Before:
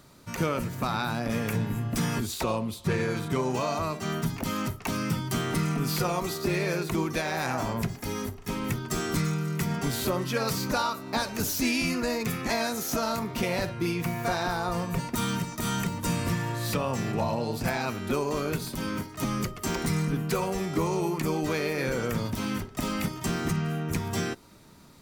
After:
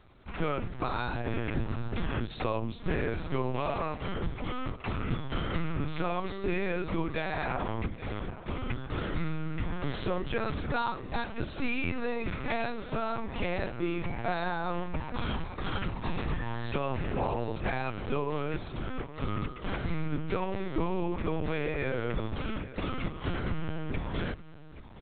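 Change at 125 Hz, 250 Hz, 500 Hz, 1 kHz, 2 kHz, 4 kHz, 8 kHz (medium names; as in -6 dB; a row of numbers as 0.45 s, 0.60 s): -4.5 dB, -5.5 dB, -3.5 dB, -3.5 dB, -3.5 dB, -8.5 dB, under -40 dB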